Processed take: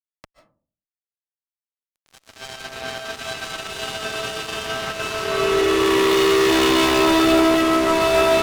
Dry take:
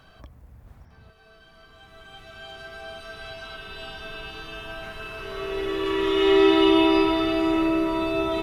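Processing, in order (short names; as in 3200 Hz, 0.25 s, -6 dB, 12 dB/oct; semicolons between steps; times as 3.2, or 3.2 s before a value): HPF 100 Hz 12 dB/oct; fuzz box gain 30 dB, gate -39 dBFS; reverb RT60 0.45 s, pre-delay 0.105 s, DRR 7 dB; gain -1.5 dB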